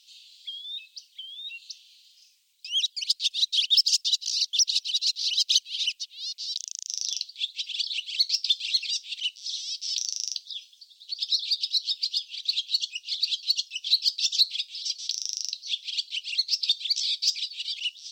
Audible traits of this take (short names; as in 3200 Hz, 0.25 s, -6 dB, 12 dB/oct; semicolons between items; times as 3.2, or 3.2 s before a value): noise floor -60 dBFS; spectral tilt -8.0 dB/oct